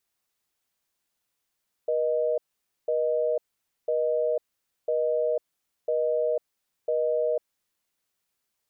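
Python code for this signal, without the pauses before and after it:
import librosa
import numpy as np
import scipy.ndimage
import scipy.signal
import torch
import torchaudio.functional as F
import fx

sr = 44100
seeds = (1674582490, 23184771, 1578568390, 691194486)

y = fx.call_progress(sr, length_s=5.7, kind='busy tone', level_db=-25.0)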